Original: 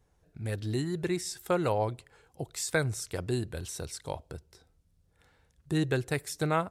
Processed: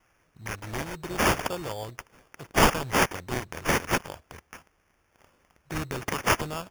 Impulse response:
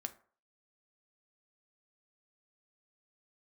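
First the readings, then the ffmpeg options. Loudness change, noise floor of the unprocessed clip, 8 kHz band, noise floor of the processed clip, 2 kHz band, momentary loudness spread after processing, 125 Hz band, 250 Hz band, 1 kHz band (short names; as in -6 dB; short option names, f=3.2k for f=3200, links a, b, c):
+5.0 dB, -69 dBFS, +4.5 dB, -69 dBFS, +9.0 dB, 20 LU, -1.5 dB, +1.0 dB, +8.0 dB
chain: -af "aexciter=amount=14.8:drive=5:freq=4.1k,acrusher=samples=11:mix=1:aa=0.000001,volume=-7.5dB"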